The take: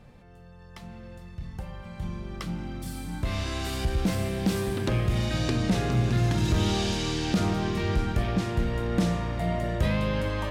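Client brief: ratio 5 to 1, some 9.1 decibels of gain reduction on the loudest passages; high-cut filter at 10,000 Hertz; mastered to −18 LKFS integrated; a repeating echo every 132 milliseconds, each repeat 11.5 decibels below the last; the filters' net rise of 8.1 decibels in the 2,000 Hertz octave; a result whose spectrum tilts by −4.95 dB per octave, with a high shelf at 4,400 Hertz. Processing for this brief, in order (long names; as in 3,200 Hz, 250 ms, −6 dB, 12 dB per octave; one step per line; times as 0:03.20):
low-pass filter 10,000 Hz
parametric band 2,000 Hz +9 dB
high-shelf EQ 4,400 Hz +5 dB
downward compressor 5 to 1, threshold −30 dBFS
repeating echo 132 ms, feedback 27%, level −11.5 dB
level +15.5 dB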